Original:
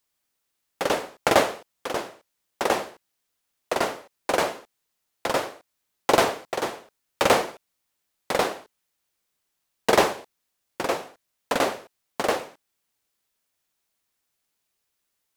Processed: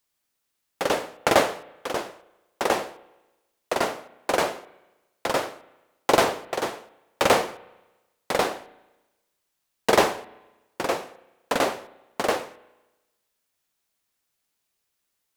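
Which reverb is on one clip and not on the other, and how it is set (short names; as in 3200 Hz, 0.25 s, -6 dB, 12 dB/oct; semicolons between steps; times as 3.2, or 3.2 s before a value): spring tank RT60 1.1 s, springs 32/36 ms, chirp 70 ms, DRR 18 dB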